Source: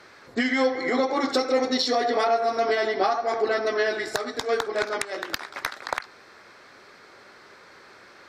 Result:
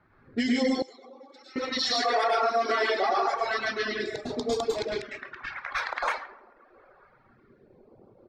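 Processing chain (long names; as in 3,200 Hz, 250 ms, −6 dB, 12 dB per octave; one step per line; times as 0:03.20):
all-pass phaser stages 2, 0.28 Hz, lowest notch 110–1,600 Hz
repeating echo 136 ms, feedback 54%, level −12.5 dB
convolution reverb RT60 1.0 s, pre-delay 97 ms, DRR −3.5 dB
reverb reduction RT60 1.2 s
brickwall limiter −16.5 dBFS, peak gain reduction 10 dB
0:00.82–0:01.56: first difference
0:05.05–0:05.71: Chebyshev low-pass with heavy ripple 7,900 Hz, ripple 6 dB
low-pass that shuts in the quiet parts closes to 610 Hz, open at −22 dBFS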